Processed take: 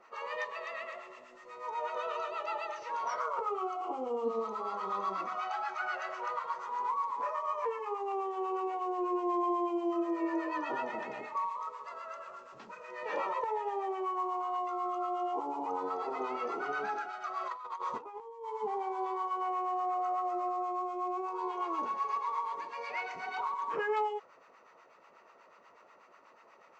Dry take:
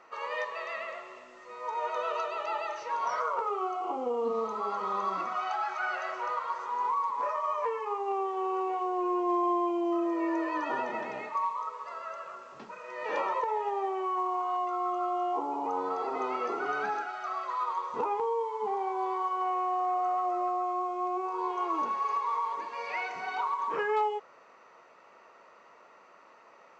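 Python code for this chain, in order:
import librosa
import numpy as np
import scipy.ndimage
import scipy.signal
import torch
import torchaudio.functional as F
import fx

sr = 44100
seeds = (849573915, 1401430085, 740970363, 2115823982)

y = fx.over_compress(x, sr, threshold_db=-36.0, ratio=-0.5, at=(17.39, 18.48), fade=0.02)
y = fx.harmonic_tremolo(y, sr, hz=8.2, depth_pct=70, crossover_hz=800.0)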